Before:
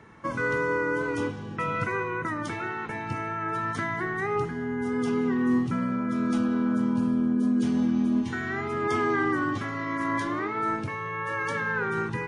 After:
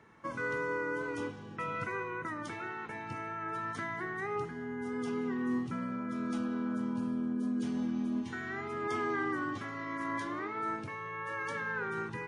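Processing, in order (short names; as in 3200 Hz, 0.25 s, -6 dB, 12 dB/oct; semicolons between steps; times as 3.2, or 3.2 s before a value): low shelf 160 Hz -6 dB; gain -7.5 dB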